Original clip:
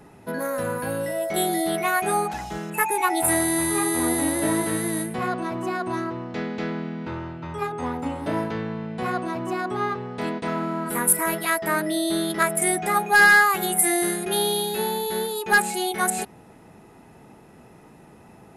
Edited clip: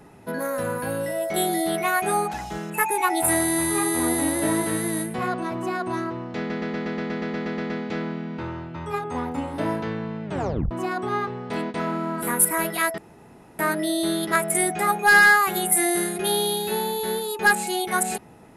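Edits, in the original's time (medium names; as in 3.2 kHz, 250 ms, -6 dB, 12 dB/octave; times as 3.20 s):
6.38 s: stutter 0.12 s, 12 plays
8.93 s: tape stop 0.46 s
11.66 s: insert room tone 0.61 s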